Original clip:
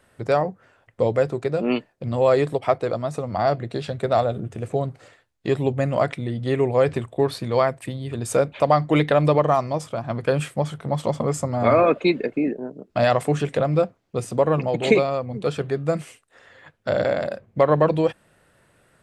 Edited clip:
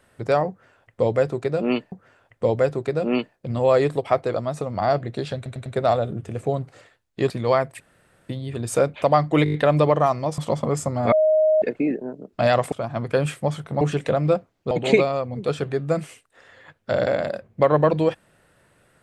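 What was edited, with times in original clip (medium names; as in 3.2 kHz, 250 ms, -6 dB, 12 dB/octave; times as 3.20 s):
0.49–1.92 s: loop, 2 plays
3.93 s: stutter 0.10 s, 4 plays
5.57–7.37 s: delete
7.87 s: insert room tone 0.49 s
9.02 s: stutter 0.02 s, 6 plays
9.86–10.95 s: move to 13.29 s
11.69–12.19 s: bleep 624 Hz -14 dBFS
14.19–14.69 s: delete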